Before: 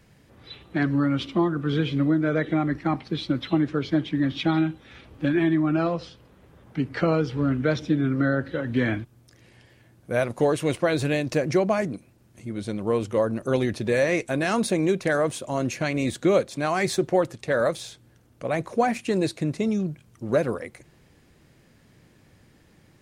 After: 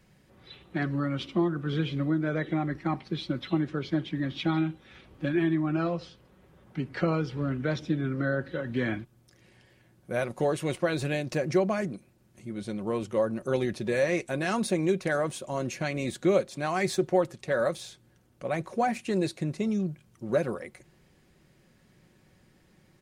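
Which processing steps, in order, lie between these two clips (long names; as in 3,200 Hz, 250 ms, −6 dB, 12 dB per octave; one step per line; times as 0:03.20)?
comb filter 5.4 ms, depth 34%
level −5 dB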